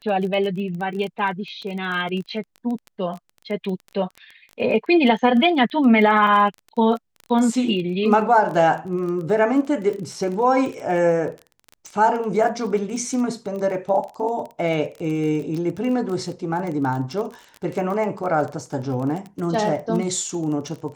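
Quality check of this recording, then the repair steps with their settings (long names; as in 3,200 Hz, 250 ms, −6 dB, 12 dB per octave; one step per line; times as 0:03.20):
surface crackle 21 per second −28 dBFS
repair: click removal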